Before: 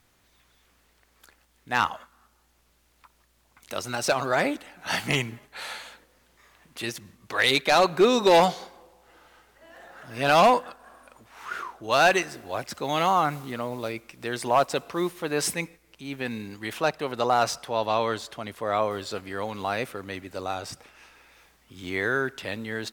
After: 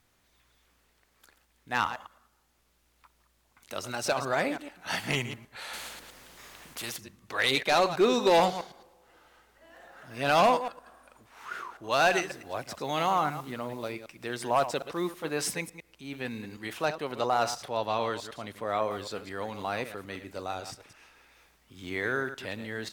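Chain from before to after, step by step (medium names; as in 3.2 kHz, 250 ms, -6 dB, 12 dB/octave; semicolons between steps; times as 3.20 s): chunks repeated in reverse 109 ms, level -11 dB; 5.73–6.97 s: spectrum-flattening compressor 2:1; trim -4.5 dB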